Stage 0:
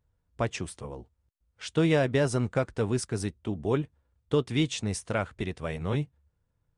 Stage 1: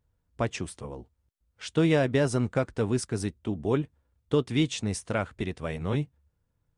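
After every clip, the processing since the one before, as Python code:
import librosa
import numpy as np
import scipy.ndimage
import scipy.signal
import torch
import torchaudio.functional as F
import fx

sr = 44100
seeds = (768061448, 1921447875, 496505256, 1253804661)

y = fx.peak_eq(x, sr, hz=260.0, db=2.5, octaves=0.77)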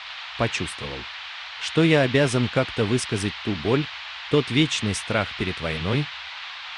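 y = fx.dmg_noise_band(x, sr, seeds[0], low_hz=780.0, high_hz=4000.0, level_db=-43.0)
y = fx.dynamic_eq(y, sr, hz=2700.0, q=0.8, threshold_db=-45.0, ratio=4.0, max_db=6)
y = y * librosa.db_to_amplitude(4.0)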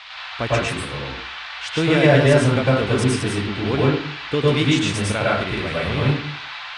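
y = fx.rev_plate(x, sr, seeds[1], rt60_s=0.58, hf_ratio=0.45, predelay_ms=90, drr_db=-6.0)
y = y * librosa.db_to_amplitude(-2.5)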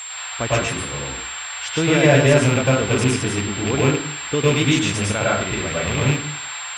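y = fx.rattle_buzz(x, sr, strikes_db=-20.0, level_db=-15.0)
y = y + 10.0 ** (-31.0 / 20.0) * np.sin(2.0 * np.pi * 7500.0 * np.arange(len(y)) / sr)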